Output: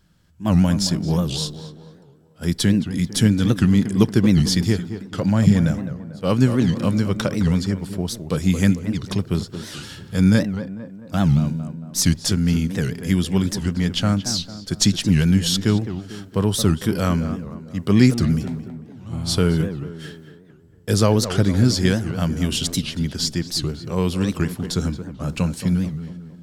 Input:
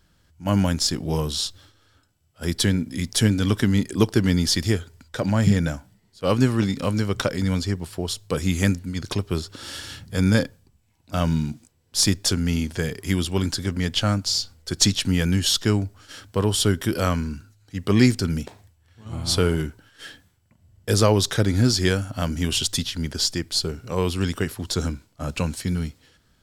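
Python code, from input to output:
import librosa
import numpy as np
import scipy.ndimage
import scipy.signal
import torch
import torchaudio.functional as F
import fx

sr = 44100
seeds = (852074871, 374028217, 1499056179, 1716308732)

y = fx.peak_eq(x, sr, hz=170.0, db=8.0, octaves=0.96)
y = fx.echo_tape(y, sr, ms=225, feedback_pct=56, wet_db=-8.0, lp_hz=1500.0, drive_db=5.0, wow_cents=28)
y = fx.record_warp(y, sr, rpm=78.0, depth_cents=250.0)
y = y * librosa.db_to_amplitude(-1.0)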